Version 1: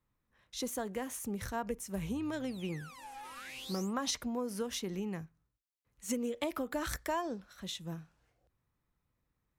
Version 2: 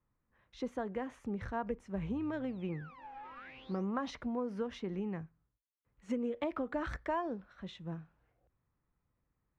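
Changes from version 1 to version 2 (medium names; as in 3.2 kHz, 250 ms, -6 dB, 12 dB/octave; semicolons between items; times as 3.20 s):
background: add distance through air 150 m; master: add low-pass 2 kHz 12 dB/octave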